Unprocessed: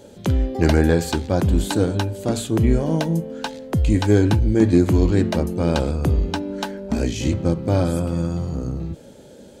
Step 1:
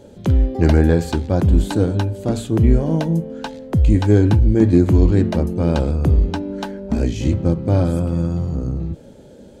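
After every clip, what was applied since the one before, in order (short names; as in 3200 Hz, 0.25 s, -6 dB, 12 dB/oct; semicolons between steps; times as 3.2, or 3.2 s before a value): tilt -1.5 dB/oct; gain -1 dB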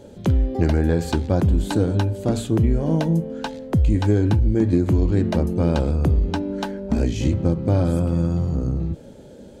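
compressor, threshold -14 dBFS, peak gain reduction 7 dB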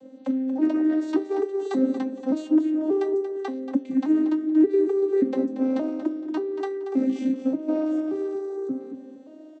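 arpeggiated vocoder minor triad, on C4, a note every 0.579 s; resonator 140 Hz, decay 0.18 s, harmonics all, mix 60%; feedback echo 0.232 s, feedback 26%, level -10.5 dB; gain +3.5 dB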